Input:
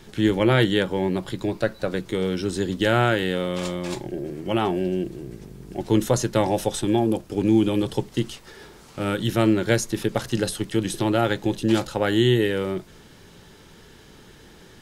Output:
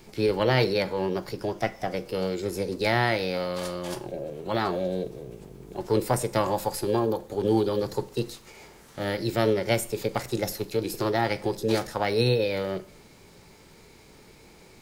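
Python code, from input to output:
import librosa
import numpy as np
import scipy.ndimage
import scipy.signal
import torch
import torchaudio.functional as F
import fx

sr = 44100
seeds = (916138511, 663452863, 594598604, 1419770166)

y = fx.formant_shift(x, sr, semitones=5)
y = fx.rev_schroeder(y, sr, rt60_s=0.55, comb_ms=31, drr_db=16.5)
y = y * 10.0 ** (-4.0 / 20.0)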